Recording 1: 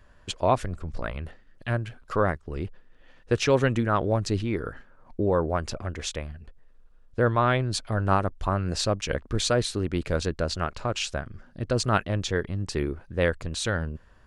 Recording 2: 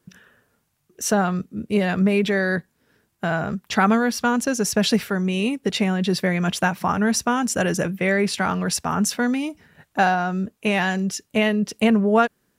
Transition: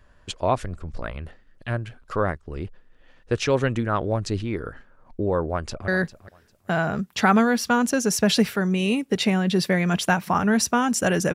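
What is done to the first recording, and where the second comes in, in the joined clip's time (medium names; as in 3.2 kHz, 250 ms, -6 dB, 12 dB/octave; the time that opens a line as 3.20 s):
recording 1
5.51–5.88 s: echo throw 400 ms, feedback 20%, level -14.5 dB
5.88 s: go over to recording 2 from 2.42 s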